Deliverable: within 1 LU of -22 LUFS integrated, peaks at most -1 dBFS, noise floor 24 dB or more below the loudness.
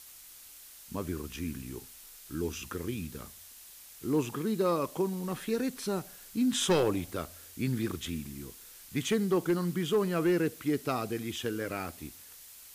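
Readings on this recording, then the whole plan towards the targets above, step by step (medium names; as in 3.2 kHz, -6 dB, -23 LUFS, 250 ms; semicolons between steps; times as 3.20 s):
clipped samples 0.3%; clipping level -20.5 dBFS; noise floor -51 dBFS; noise floor target -56 dBFS; loudness -32.0 LUFS; peak level -20.5 dBFS; loudness target -22.0 LUFS
-> clip repair -20.5 dBFS; noise reduction 6 dB, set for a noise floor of -51 dBFS; trim +10 dB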